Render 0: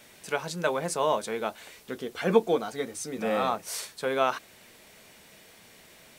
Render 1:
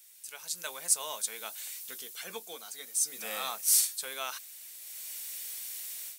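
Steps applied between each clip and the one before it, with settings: high shelf 4700 Hz +7.5 dB; AGC gain up to 16.5 dB; pre-emphasis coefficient 0.97; gain -6 dB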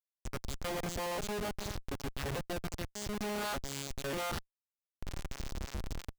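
arpeggiated vocoder major triad, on C#3, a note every 0.589 s; in parallel at -1 dB: limiter -27.5 dBFS, peak gain reduction 9 dB; on the sum: Schmitt trigger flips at -35.5 dBFS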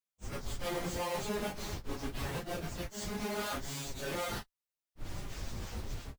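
phase scrambler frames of 0.1 s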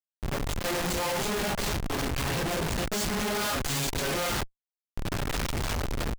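AGC gain up to 10 dB; Schmitt trigger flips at -41 dBFS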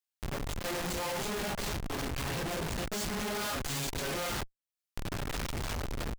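mismatched tape noise reduction encoder only; gain -5.5 dB

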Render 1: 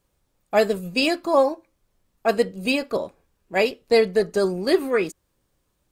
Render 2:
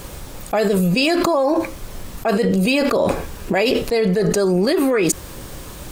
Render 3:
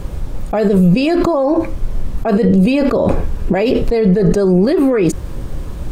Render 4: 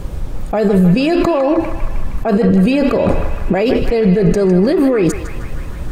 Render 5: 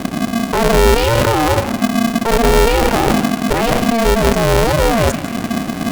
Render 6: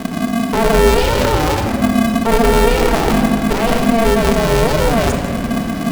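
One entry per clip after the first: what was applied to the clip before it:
fast leveller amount 100%; gain -3 dB
tilt -3 dB/oct
narrowing echo 0.156 s, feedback 75%, band-pass 1700 Hz, level -5.5 dB
vocal rider within 4 dB 2 s; polarity switched at an audio rate 230 Hz; gain -1.5 dB
shoebox room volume 3100 m³, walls mixed, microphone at 1.6 m; gain -3 dB

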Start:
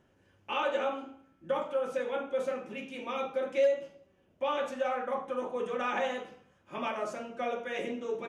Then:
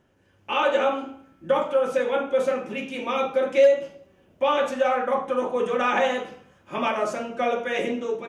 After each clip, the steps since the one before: AGC gain up to 7 dB; gain +2.5 dB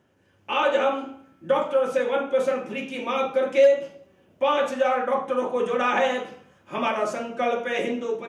HPF 80 Hz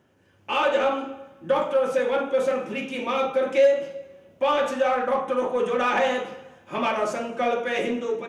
reverb RT60 1.3 s, pre-delay 8 ms, DRR 15.5 dB; in parallel at -5.5 dB: soft clip -25 dBFS, distortion -7 dB; on the sum: gain -2 dB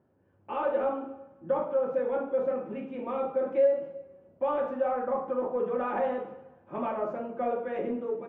LPF 1000 Hz 12 dB/oct; gain -5 dB

